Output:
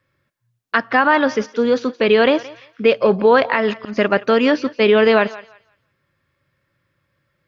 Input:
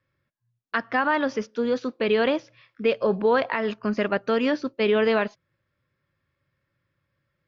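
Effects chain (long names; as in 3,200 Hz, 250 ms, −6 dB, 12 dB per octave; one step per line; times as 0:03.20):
low-shelf EQ 160 Hz −4 dB
0:03.29–0:03.96: volume swells 184 ms
feedback echo with a high-pass in the loop 172 ms, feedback 25%, high-pass 590 Hz, level −17 dB
level +8.5 dB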